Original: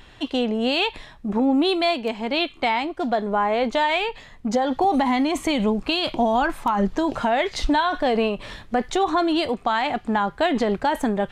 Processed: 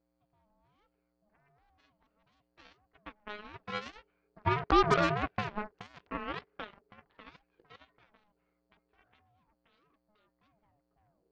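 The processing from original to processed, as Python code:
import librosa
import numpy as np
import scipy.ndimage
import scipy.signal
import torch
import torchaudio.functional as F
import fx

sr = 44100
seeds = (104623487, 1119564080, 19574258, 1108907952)

y = fx.tape_stop_end(x, sr, length_s=0.76)
y = fx.doppler_pass(y, sr, speed_mps=7, closest_m=4.2, pass_at_s=4.95)
y = scipy.signal.sosfilt(scipy.signal.cheby2(4, 70, 8100.0, 'lowpass', fs=sr, output='sos'), y)
y = fx.peak_eq(y, sr, hz=110.0, db=-12.0, octaves=2.6)
y = fx.dmg_buzz(y, sr, base_hz=120.0, harmonics=37, level_db=-54.0, tilt_db=-5, odd_only=False)
y = fx.cheby_harmonics(y, sr, harmonics=(2, 4, 5, 7), levels_db=(-12, -25, -43, -16), full_scale_db=-13.0)
y = y * np.sin(2.0 * np.pi * 420.0 * np.arange(len(y)) / sr)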